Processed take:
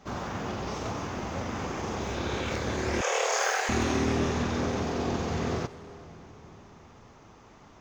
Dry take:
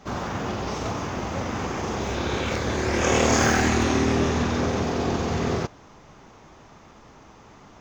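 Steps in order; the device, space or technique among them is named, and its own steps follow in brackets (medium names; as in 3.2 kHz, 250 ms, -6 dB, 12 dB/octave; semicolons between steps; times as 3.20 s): saturated reverb return (on a send at -10 dB: reverberation RT60 3.3 s, pre-delay 93 ms + saturation -28 dBFS, distortion -6 dB); 3.01–3.69 s: on the sum: steep high-pass 430 Hz 72 dB/octave; trim -5 dB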